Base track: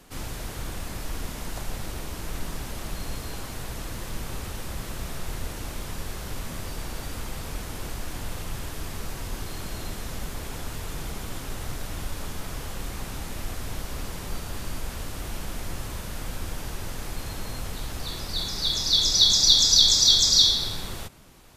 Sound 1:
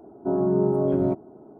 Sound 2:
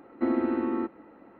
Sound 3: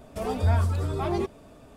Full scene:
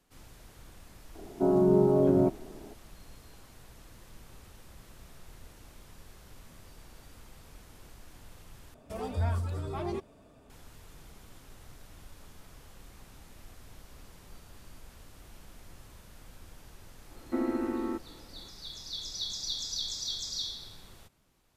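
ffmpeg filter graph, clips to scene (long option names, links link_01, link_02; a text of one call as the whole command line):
ffmpeg -i bed.wav -i cue0.wav -i cue1.wav -i cue2.wav -filter_complex "[0:a]volume=-18dB,asplit=2[link_01][link_02];[link_01]atrim=end=8.744[link_03];[3:a]atrim=end=1.76,asetpts=PTS-STARTPTS,volume=-7.5dB[link_04];[link_02]atrim=start=10.496[link_05];[1:a]atrim=end=1.59,asetpts=PTS-STARTPTS,volume=-1dB,afade=type=in:duration=0.004:curve=hsin,afade=type=out:start_time=1.586:duration=0.004:curve=hsin,adelay=1150[link_06];[2:a]atrim=end=1.39,asetpts=PTS-STARTPTS,volume=-4.5dB,afade=type=in:duration=0.004:curve=hsin,afade=type=out:start_time=1.386:duration=0.004:curve=hsin,adelay=17110[link_07];[link_03][link_04]acrossfade=duration=0.004:curve1=hsin:curve2=hsin[link_08];[link_08][link_05]acrossfade=duration=0.004:curve1=hsin:curve2=hsin[link_09];[link_09][link_06][link_07]amix=inputs=3:normalize=0" out.wav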